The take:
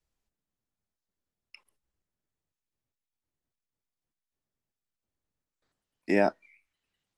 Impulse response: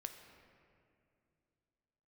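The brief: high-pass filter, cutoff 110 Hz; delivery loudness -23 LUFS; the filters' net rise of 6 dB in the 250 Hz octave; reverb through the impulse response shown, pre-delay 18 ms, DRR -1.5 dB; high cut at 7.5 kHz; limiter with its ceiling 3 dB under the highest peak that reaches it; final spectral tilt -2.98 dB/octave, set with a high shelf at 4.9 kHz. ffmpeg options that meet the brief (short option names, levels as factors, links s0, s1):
-filter_complex "[0:a]highpass=110,lowpass=7500,equalizer=f=250:t=o:g=8,highshelf=f=4900:g=3.5,alimiter=limit=0.251:level=0:latency=1,asplit=2[s0][s1];[1:a]atrim=start_sample=2205,adelay=18[s2];[s1][s2]afir=irnorm=-1:irlink=0,volume=1.78[s3];[s0][s3]amix=inputs=2:normalize=0,volume=1.19"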